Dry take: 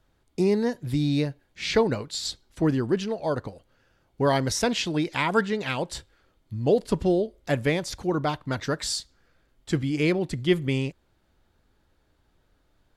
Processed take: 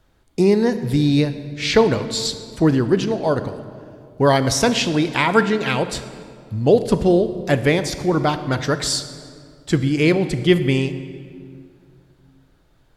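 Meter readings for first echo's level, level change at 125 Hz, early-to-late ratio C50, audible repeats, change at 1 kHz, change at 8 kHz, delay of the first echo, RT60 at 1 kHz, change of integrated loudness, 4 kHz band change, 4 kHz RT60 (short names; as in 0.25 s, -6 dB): none, +7.5 dB, 11.5 dB, none, +7.5 dB, +7.0 dB, none, 2.0 s, +7.5 dB, +7.0 dB, 1.4 s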